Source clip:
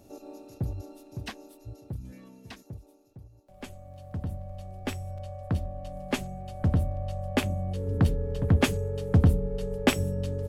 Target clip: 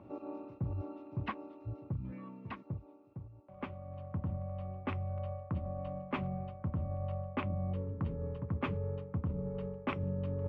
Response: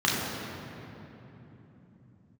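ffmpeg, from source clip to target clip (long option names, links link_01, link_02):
-af "areverse,acompressor=threshold=-33dB:ratio=10,areverse,highpass=100,equalizer=frequency=250:width_type=q:width=4:gain=-4,equalizer=frequency=430:width_type=q:width=4:gain=-7,equalizer=frequency=700:width_type=q:width=4:gain=-7,equalizer=frequency=1100:width_type=q:width=4:gain=7,equalizer=frequency=1700:width_type=q:width=4:gain=-8,lowpass=frequency=2200:width=0.5412,lowpass=frequency=2200:width=1.3066,volume=4.5dB"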